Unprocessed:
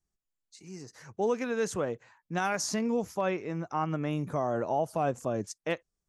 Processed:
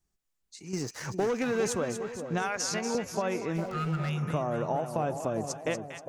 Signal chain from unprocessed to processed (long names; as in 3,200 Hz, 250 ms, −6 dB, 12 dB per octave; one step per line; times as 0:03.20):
0:00.73–0:01.73: leveller curve on the samples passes 2
0:02.42–0:02.95: meter weighting curve A
0:03.73–0:04.24: healed spectral selection 210–1,200 Hz
downward compressor, threshold −32 dBFS, peak gain reduction 9.5 dB
on a send: echo with a time of its own for lows and highs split 890 Hz, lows 407 ms, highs 238 ms, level −8 dB
0:03.56–0:04.10: on the sum: windowed peak hold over 5 samples
level +5 dB